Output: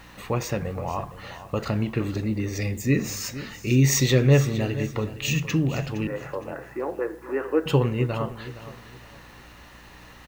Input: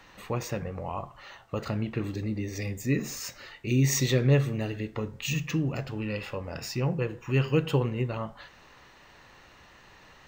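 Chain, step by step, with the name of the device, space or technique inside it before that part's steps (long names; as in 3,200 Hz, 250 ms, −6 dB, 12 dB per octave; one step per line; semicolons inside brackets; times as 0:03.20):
0:06.07–0:07.66: elliptic band-pass filter 310–1,800 Hz
video cassette with head-switching buzz (hum with harmonics 60 Hz, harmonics 5, −57 dBFS −4 dB per octave; white noise bed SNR 37 dB)
repeating echo 464 ms, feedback 28%, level −14.5 dB
level +5 dB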